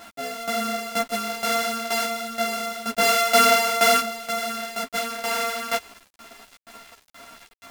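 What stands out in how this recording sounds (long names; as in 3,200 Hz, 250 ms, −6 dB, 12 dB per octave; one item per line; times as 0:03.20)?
a buzz of ramps at a fixed pitch in blocks of 64 samples
tremolo saw down 2.1 Hz, depth 80%
a quantiser's noise floor 8 bits, dither none
a shimmering, thickened sound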